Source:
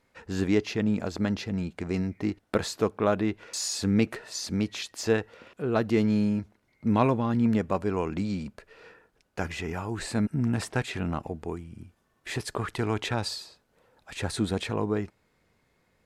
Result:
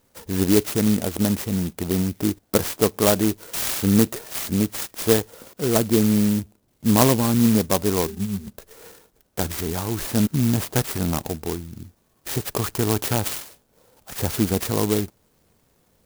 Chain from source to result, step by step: 5.77–6.89 s: tape spacing loss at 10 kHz 34 dB; 8.07–8.47 s: pitch-class resonator G, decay 0.11 s; sampling jitter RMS 0.14 ms; trim +6.5 dB

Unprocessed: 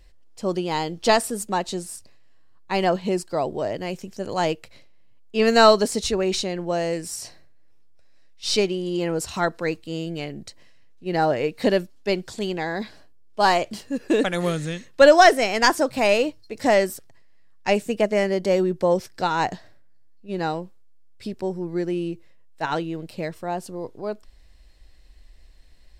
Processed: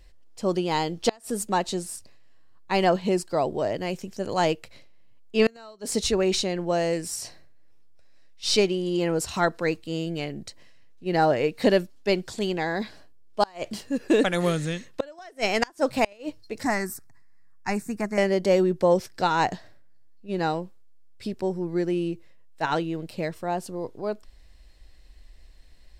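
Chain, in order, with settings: 16.63–18.18 s: static phaser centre 1.3 kHz, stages 4; inverted gate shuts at -8 dBFS, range -32 dB

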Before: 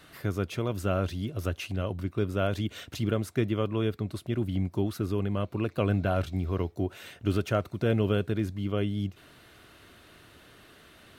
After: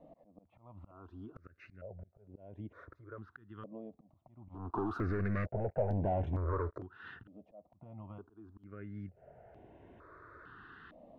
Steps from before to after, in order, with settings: bass shelf 93 Hz -3.5 dB; compression 16:1, threshold -39 dBFS, peak gain reduction 19 dB; 4.49–6.78 s: waveshaping leveller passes 5; slow attack 266 ms; LFO low-pass saw up 0.55 Hz 560–1900 Hz; stepped phaser 2.2 Hz 390–4500 Hz

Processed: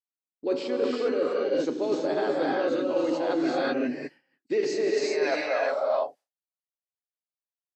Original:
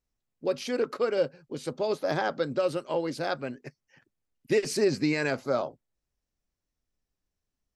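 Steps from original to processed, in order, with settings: knee-point frequency compression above 3.7 kHz 1.5:1; high-pass sweep 300 Hz -> 650 Hz, 4.53–5.05 s; gated-style reverb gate 410 ms rising, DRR -3 dB; expander -46 dBFS; reverse; compression 6:1, threshold -29 dBFS, peak gain reduction 14.5 dB; reverse; trim +5.5 dB

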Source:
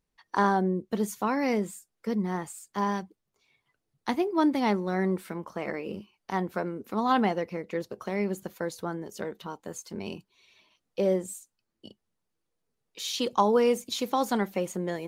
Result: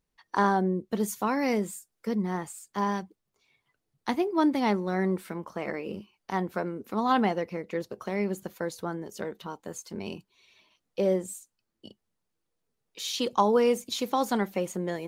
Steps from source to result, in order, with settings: 1.00–2.09 s: treble shelf 6.3 kHz +5 dB

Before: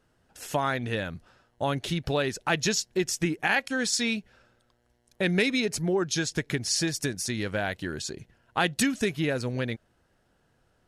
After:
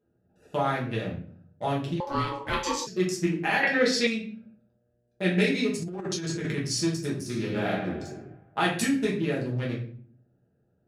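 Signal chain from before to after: local Wiener filter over 41 samples; high-pass 110 Hz 12 dB/octave; simulated room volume 53 m³, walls mixed, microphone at 1.3 m; 2.00–2.87 s: ring modulator 700 Hz; 3.63–4.07 s: graphic EQ 500/2000/4000/8000 Hz +12/+11/+7/-8 dB; 5.82–6.58 s: compressor with a negative ratio -26 dBFS, ratio -1; 7.22–7.71 s: reverb throw, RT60 1.4 s, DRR 0 dB; trim -6 dB

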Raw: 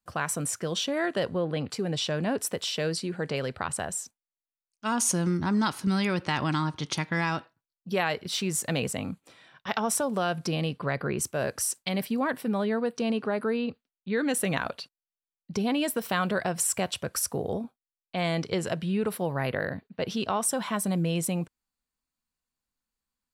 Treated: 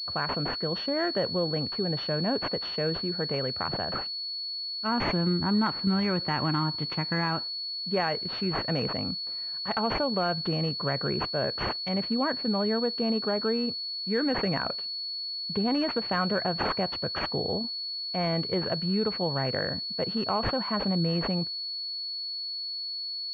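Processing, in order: class-D stage that switches slowly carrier 4.4 kHz

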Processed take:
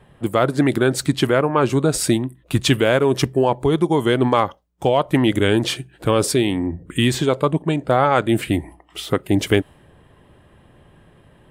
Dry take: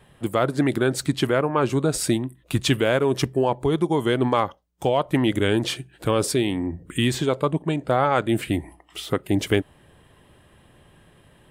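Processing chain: tape noise reduction on one side only decoder only; trim +4 dB

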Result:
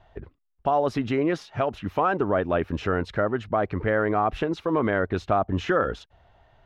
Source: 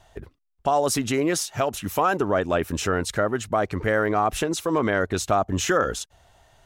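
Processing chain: distance through air 330 m

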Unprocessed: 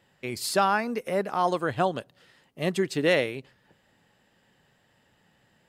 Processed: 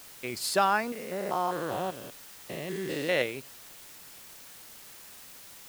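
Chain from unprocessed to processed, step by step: 0.92–3.22 s: spectrogram pixelated in time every 200 ms; bass shelf 230 Hz -6.5 dB; word length cut 8-bit, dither triangular; trim -1 dB

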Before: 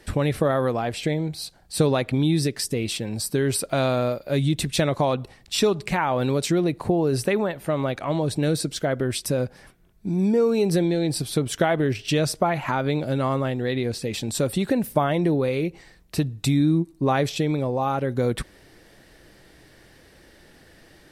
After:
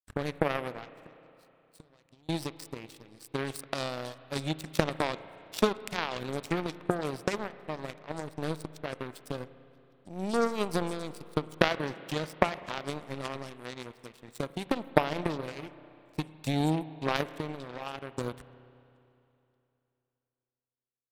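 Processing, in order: 0.84–2.29 s: compression 12:1, threshold -28 dBFS, peak gain reduction 14 dB; repeats whose band climbs or falls 579 ms, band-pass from 2.5 kHz, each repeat 0.7 oct, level -5.5 dB; power-law waveshaper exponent 3; spring tank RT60 2.9 s, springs 32/51 ms, chirp 45 ms, DRR 14.5 dB; trim +6 dB

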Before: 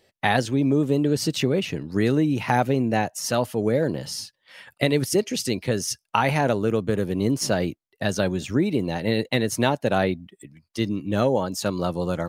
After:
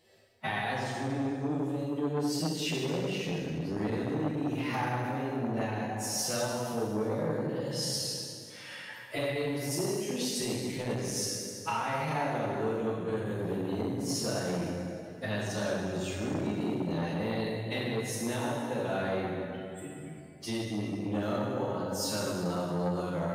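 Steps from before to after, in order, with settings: hum notches 50/100/150/200 Hz; compression 10:1, threshold -29 dBFS, peak gain reduction 15 dB; time stretch by phase-locked vocoder 1.9×; plate-style reverb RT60 2.6 s, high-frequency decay 0.65×, DRR -5.5 dB; transformer saturation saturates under 650 Hz; trim -3.5 dB

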